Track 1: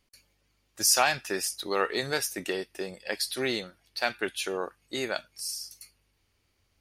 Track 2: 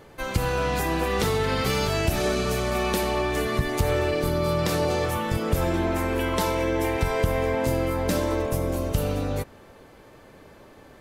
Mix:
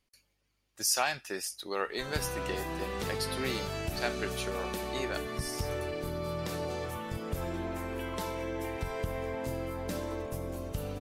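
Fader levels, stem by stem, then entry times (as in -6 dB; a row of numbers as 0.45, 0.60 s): -6.0, -11.5 dB; 0.00, 1.80 s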